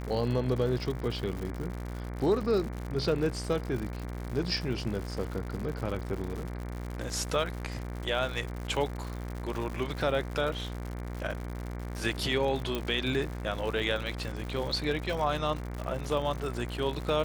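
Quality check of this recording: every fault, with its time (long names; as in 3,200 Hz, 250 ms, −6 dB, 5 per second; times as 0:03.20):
mains buzz 60 Hz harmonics 39 −37 dBFS
surface crackle 130 per second −35 dBFS
0:12.75: click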